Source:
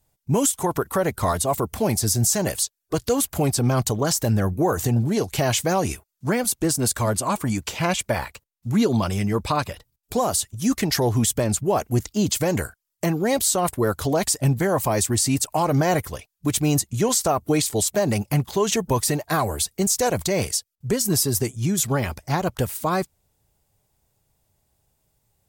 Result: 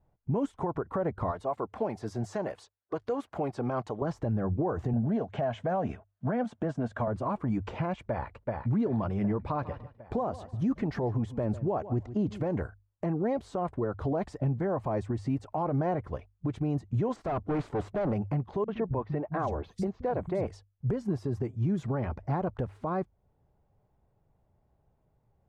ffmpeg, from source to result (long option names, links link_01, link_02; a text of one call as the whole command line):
ffmpeg -i in.wav -filter_complex "[0:a]asettb=1/sr,asplit=3[link_01][link_02][link_03];[link_01]atrim=end=1.314[link_04];[link_02]atrim=start=1.31:end=4.02,asetpts=PTS-STARTPTS,afade=type=in:duration=0.004:curve=qsin,afade=type=out:start_time=2.706:duration=0.004:curve=qsin,highpass=frequency=640:poles=1[link_05];[link_03]atrim=start=4.016[link_06];[link_04][link_05]acrossfade=duration=0.004:curve1=hsin:curve2=qsin[link_07];[link_07][link_06]acrossfade=duration=0.004:curve1=qsin:curve2=hsin,asettb=1/sr,asplit=3[link_08][link_09][link_10];[link_08]atrim=end=4.934[link_11];[link_09]atrim=start=4.93:end=7.08,asetpts=PTS-STARTPTS,afade=type=in:duration=0.004:curve=qsin,afade=type=out:start_time=2.146:duration=0.004:curve=qsin,highpass=110,equalizer=frequency=230:width_type=q:width=4:gain=5,equalizer=frequency=340:width_type=q:width=4:gain=-8,equalizer=frequency=660:width_type=q:width=4:gain=9,equalizer=frequency=1600:width_type=q:width=4:gain=6,equalizer=frequency=3200:width_type=q:width=4:gain=6,equalizer=frequency=4700:width_type=q:width=4:gain=-5,lowpass=frequency=8400:width=0.5412,lowpass=frequency=8400:width=1.3066[link_12];[link_10]atrim=start=7.076[link_13];[link_11][link_12]acrossfade=duration=0.004:curve1=hsin:curve2=qsin[link_14];[link_14][link_13]acrossfade=duration=0.004:curve1=qsin:curve2=hsin,asplit=2[link_15][link_16];[link_16]afade=type=in:start_time=8.04:duration=0.01,afade=type=out:start_time=8.72:duration=0.01,aecho=0:1:380|760|1140|1520|1900|2280|2660:0.316228|0.189737|0.113842|0.0683052|0.0409831|0.0245899|0.0147539[link_17];[link_15][link_17]amix=inputs=2:normalize=0,asplit=3[link_18][link_19][link_20];[link_18]afade=type=out:start_time=9.62:duration=0.02[link_21];[link_19]aecho=1:1:147|294:0.119|0.0214,afade=type=in:start_time=9.62:duration=0.02,afade=type=out:start_time=12.54:duration=0.02[link_22];[link_20]afade=type=in:start_time=12.54:duration=0.02[link_23];[link_21][link_22][link_23]amix=inputs=3:normalize=0,asettb=1/sr,asplit=3[link_24][link_25][link_26];[link_24]atrim=end=17.164[link_27];[link_25]atrim=start=17.16:end=18.13,asetpts=PTS-STARTPTS,afade=type=in:duration=0.004:curve=qsin,afade=type=out:start_time=0.966:duration=0.004:curve=qsin,asoftclip=type=hard:threshold=-28dB[link_28];[link_26]atrim=start=18.126[link_29];[link_27][link_28]acrossfade=duration=0.004:curve1=hsin:curve2=qsin[link_30];[link_30][link_29]acrossfade=duration=0.004:curve1=qsin:curve2=hsin,asettb=1/sr,asplit=3[link_31][link_32][link_33];[link_31]atrim=end=18.644[link_34];[link_32]atrim=start=18.64:end=20.47,asetpts=PTS-STARTPTS,afade=type=in:duration=0.004:curve=qsin,afade=type=out:start_time=1.826:duration=0.004:curve=qsin,acrossover=split=170|3500[link_35][link_36][link_37];[link_36]adelay=40[link_38];[link_37]adelay=750[link_39];[link_35][link_38][link_39]amix=inputs=3:normalize=0,atrim=end_sample=80703[link_40];[link_33]atrim=start=20.466[link_41];[link_34][link_40]acrossfade=duration=0.004:curve1=hsin:curve2=qsin[link_42];[link_42][link_41]acrossfade=duration=0.004:curve1=qsin:curve2=hsin,lowpass=1100,bandreject=frequency=50:width_type=h:width=6,bandreject=frequency=100:width_type=h:width=6,alimiter=limit=-23dB:level=0:latency=1:release=317,volume=1.5dB" out.wav